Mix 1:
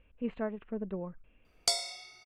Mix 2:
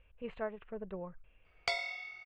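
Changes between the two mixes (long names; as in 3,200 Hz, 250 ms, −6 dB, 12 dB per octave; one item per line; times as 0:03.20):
background: add low-pass with resonance 2,300 Hz, resonance Q 2.8
master: add parametric band 250 Hz −12.5 dB 0.99 octaves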